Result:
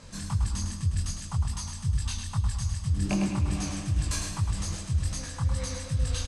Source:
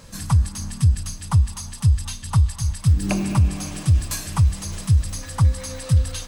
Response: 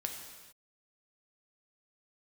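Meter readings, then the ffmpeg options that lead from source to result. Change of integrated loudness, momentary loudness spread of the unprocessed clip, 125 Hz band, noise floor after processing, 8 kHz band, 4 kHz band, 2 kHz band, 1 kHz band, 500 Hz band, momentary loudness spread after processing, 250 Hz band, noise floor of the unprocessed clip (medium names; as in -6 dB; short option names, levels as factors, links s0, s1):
-8.5 dB, 6 LU, -9.5 dB, -39 dBFS, -4.5 dB, -3.5 dB, -4.5 dB, -7.5 dB, -5.0 dB, 4 LU, -5.0 dB, -38 dBFS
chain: -af "lowpass=f=9300:w=0.5412,lowpass=f=9300:w=1.3066,areverse,acompressor=threshold=0.0891:ratio=6,areverse,flanger=delay=19:depth=6:speed=2.5,aecho=1:1:106|212|318|424:0.501|0.185|0.0686|0.0254"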